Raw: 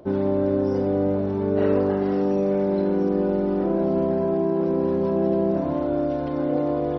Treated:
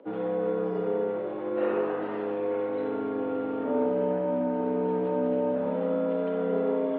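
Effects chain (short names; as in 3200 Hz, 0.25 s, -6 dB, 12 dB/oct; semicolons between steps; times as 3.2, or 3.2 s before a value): spring tank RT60 1.2 s, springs 42/57 ms, chirp 45 ms, DRR 0 dB; mistuned SSB -80 Hz 390–3500 Hz; gain -3 dB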